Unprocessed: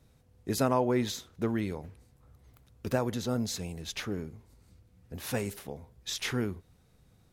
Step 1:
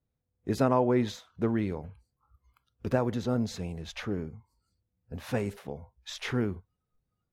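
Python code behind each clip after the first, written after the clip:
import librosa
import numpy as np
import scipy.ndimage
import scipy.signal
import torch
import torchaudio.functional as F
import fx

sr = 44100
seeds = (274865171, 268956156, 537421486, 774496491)

y = fx.lowpass(x, sr, hz=1900.0, slope=6)
y = fx.noise_reduce_blind(y, sr, reduce_db=22)
y = y * 10.0 ** (2.5 / 20.0)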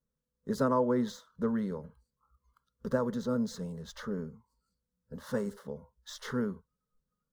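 y = scipy.ndimage.median_filter(x, 3, mode='constant')
y = fx.fixed_phaser(y, sr, hz=490.0, stages=8)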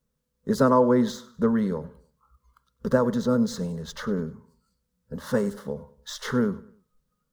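y = fx.echo_feedback(x, sr, ms=99, feedback_pct=39, wet_db=-19.5)
y = y * 10.0 ** (8.5 / 20.0)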